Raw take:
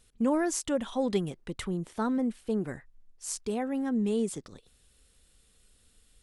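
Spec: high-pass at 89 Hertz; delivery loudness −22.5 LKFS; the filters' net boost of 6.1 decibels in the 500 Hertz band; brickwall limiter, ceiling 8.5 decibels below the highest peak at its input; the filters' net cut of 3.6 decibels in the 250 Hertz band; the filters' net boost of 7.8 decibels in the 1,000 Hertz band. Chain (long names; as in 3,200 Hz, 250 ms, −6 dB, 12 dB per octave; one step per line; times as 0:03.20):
high-pass filter 89 Hz
parametric band 250 Hz −6.5 dB
parametric band 500 Hz +7 dB
parametric band 1,000 Hz +8 dB
level +9 dB
brickwall limiter −11.5 dBFS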